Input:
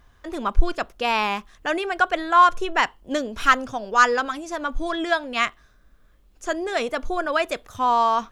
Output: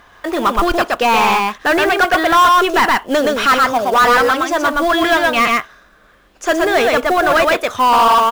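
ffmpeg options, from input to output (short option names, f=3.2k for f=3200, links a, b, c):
-filter_complex "[0:a]aecho=1:1:121:0.631,asplit=2[a][b];[b]highpass=f=720:p=1,volume=27dB,asoftclip=type=tanh:threshold=-1dB[c];[a][c]amix=inputs=2:normalize=0,lowpass=f=2.4k:p=1,volume=-6dB,acrusher=bits=5:mode=log:mix=0:aa=0.000001,volume=-2dB"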